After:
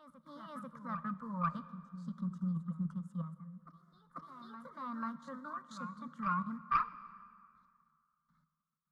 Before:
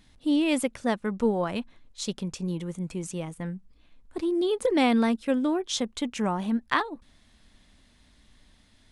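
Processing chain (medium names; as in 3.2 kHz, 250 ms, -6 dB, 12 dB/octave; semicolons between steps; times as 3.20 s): coarse spectral quantiser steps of 15 dB; gate with hold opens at -47 dBFS; level held to a coarse grid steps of 16 dB; short-mantissa float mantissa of 4-bit; two resonant band-passes 410 Hz, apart 2.8 oct; formant shift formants +2 st; static phaser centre 510 Hz, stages 8; Chebyshev shaper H 2 -10 dB, 4 -24 dB, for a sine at -29.5 dBFS; reverse echo 490 ms -11 dB; plate-style reverb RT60 2.3 s, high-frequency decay 0.65×, DRR 14.5 dB; trim +10 dB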